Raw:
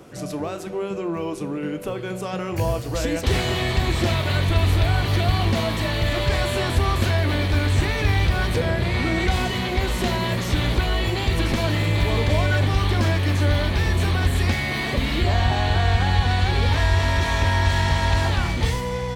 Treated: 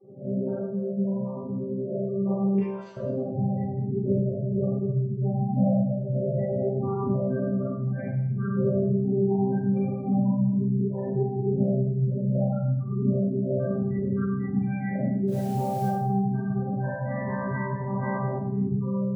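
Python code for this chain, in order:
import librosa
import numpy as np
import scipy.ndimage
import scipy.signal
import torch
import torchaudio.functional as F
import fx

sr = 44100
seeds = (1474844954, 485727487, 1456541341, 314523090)

y = fx.chord_vocoder(x, sr, chord='bare fifth', root=48)
y = fx.highpass(y, sr, hz=1400.0, slope=12, at=(2.55, 2.97))
y = fx.spec_gate(y, sr, threshold_db=-15, keep='strong')
y = fx.quant_dither(y, sr, seeds[0], bits=8, dither='none', at=(15.27, 15.85), fade=0.02)
y = fx.rev_schroeder(y, sr, rt60_s=0.75, comb_ms=28, drr_db=-10.0)
y = F.gain(torch.from_numpy(y), -7.5).numpy()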